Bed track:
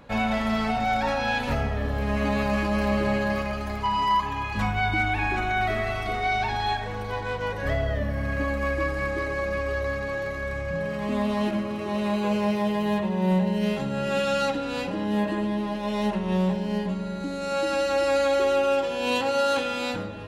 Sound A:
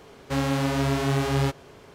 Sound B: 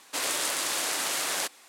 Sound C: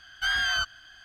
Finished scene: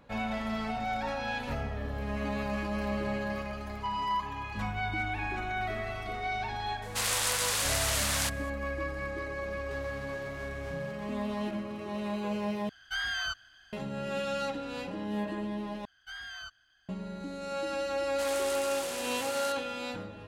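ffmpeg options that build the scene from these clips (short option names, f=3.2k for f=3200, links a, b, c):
-filter_complex "[2:a]asplit=2[a][b];[3:a]asplit=2[c][d];[0:a]volume=-8.5dB[e];[a]highpass=740[f];[1:a]acompressor=threshold=-37dB:ratio=6:attack=3.2:release=140:knee=1:detection=peak[g];[e]asplit=3[h][i][j];[h]atrim=end=12.694[k];[c]atrim=end=1.04,asetpts=PTS-STARTPTS,volume=-7dB[l];[i]atrim=start=13.726:end=15.854[m];[d]atrim=end=1.04,asetpts=PTS-STARTPTS,volume=-17dB[n];[j]atrim=start=16.886[o];[f]atrim=end=1.68,asetpts=PTS-STARTPTS,volume=-0.5dB,afade=t=in:d=0.004:c=hsin,afade=t=out:st=1.676:d=0.004:c=hsin,adelay=300762S[p];[g]atrim=end=1.94,asetpts=PTS-STARTPTS,volume=-7dB,afade=t=in:d=0.004:c=hsin,afade=t=out:st=1.936:d=0.004:c=hsin,adelay=9410[q];[b]atrim=end=1.68,asetpts=PTS-STARTPTS,volume=-10.5dB,afade=t=in:d=0.004:c=hsin,afade=t=out:st=1.676:d=0.004:c=hsin,adelay=18050[r];[k][l]acrossfade=d=0.004:c1=hsin:c2=hsin[s];[s][m]acrossfade=d=0.004:c1=hsin:c2=hsin[t];[t][n]acrossfade=d=0.004:c1=hsin:c2=hsin[u];[u][o]acrossfade=d=0.004:c1=hsin:c2=hsin[v];[v][p][q][r]amix=inputs=4:normalize=0"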